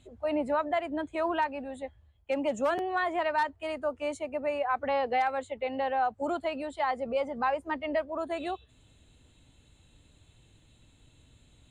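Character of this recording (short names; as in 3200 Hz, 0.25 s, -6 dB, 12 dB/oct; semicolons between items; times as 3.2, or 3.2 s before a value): noise floor -62 dBFS; spectral tilt -2.0 dB/oct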